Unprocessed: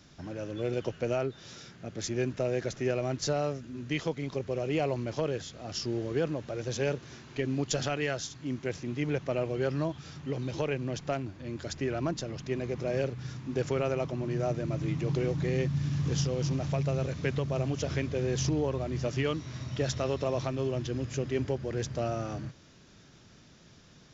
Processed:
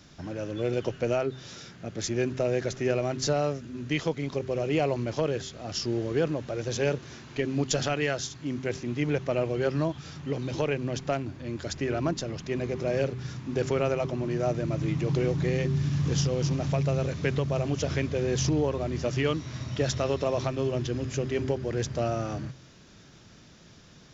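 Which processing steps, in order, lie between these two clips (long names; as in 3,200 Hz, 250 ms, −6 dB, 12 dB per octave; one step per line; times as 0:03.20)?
hum removal 129.9 Hz, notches 3
level +3.5 dB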